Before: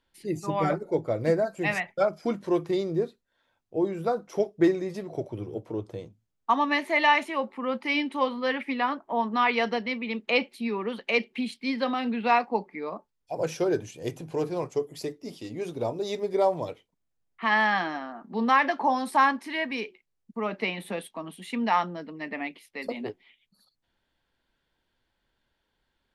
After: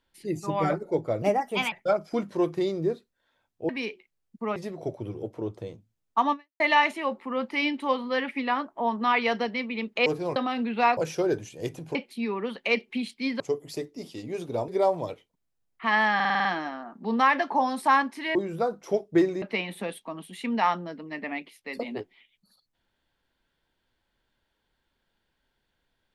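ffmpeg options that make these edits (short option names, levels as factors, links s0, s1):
-filter_complex "[0:a]asplit=20[s0][s1][s2][s3][s4][s5][s6][s7][s8][s9][s10][s11][s12][s13][s14][s15][s16][s17][s18][s19];[s0]atrim=end=1.224[s20];[s1]atrim=start=1.22:end=1.84,asetpts=PTS-STARTPTS,asetrate=54684,aresample=44100[s21];[s2]atrim=start=1.836:end=3.812[s22];[s3]atrim=start=19.638:end=20.512[s23];[s4]atrim=start=4.878:end=6.92,asetpts=PTS-STARTPTS,afade=t=out:st=1.772:d=0.27:c=exp[s24];[s5]atrim=start=6.92:end=10.382,asetpts=PTS-STARTPTS,afade=t=in:d=0.004:c=hsin[s25];[s6]atrim=start=14.368:end=14.672[s26];[s7]atrim=start=11.828:end=12.442[s27];[s8]atrim=start=13.388:end=14.372[s28];[s9]atrim=start=10.378:end=11.832[s29];[s10]atrim=start=14.668:end=15.952[s30];[s11]atrim=start=16.268:end=17.792[s31];[s12]atrim=start=17.738:end=17.792[s32];[s13]atrim=start=17.738:end=17.792[s33];[s14]atrim=start=17.738:end=17.792[s34];[s15]atrim=start=17.738:end=17.792[s35];[s16]atrim=start=17.738:end=17.792[s36];[s17]atrim=start=17.738:end=19.642[s37];[s18]atrim=start=3.808:end=4.882[s38];[s19]atrim=start=20.508[s39];[s20][s21]acrossfade=d=0.004:c1=hsin:c2=hsin[s40];[s40][s22]acrossfade=d=0.004:c1=hsin:c2=hsin[s41];[s41][s23]acrossfade=d=0.004:c1=hsin:c2=hsin[s42];[s24][s25]concat=n=2:v=0:a=1[s43];[s42][s43]acrossfade=d=0.004:c1=hsin:c2=hsin[s44];[s44][s26]acrossfade=d=0.004:c1=hsin:c2=hsin[s45];[s45][s27]acrossfade=d=0.004:c1=hsin:c2=hsin[s46];[s46][s28]acrossfade=d=0.004:c1=hsin:c2=hsin[s47];[s47][s29]acrossfade=d=0.004:c1=hsin:c2=hsin[s48];[s48][s30]acrossfade=d=0.004:c1=hsin:c2=hsin[s49];[s49][s31]acrossfade=d=0.004:c1=hsin:c2=hsin[s50];[s50][s32]acrossfade=d=0.004:c1=hsin:c2=hsin[s51];[s51][s33]acrossfade=d=0.004:c1=hsin:c2=hsin[s52];[s52][s34]acrossfade=d=0.004:c1=hsin:c2=hsin[s53];[s53][s35]acrossfade=d=0.004:c1=hsin:c2=hsin[s54];[s54][s36]acrossfade=d=0.004:c1=hsin:c2=hsin[s55];[s55][s37]acrossfade=d=0.004:c1=hsin:c2=hsin[s56];[s56][s38]acrossfade=d=0.004:c1=hsin:c2=hsin[s57];[s57][s39]acrossfade=d=0.004:c1=hsin:c2=hsin"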